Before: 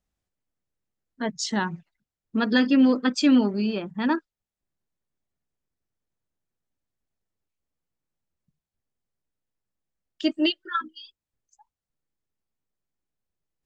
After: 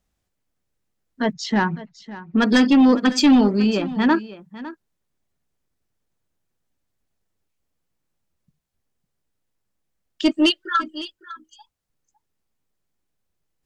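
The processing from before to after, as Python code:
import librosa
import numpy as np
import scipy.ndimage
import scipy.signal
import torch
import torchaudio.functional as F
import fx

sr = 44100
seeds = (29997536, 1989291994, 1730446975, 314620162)

p1 = fx.lowpass(x, sr, hz=3400.0, slope=12, at=(1.33, 2.42))
p2 = fx.fold_sine(p1, sr, drive_db=5, ceiling_db=-8.5)
p3 = p2 + fx.echo_single(p2, sr, ms=555, db=-16.5, dry=0)
y = p3 * 10.0 ** (-1.5 / 20.0)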